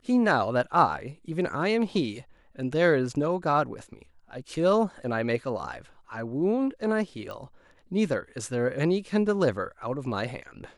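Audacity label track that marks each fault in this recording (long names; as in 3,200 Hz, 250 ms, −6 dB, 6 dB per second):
7.310000	7.310000	click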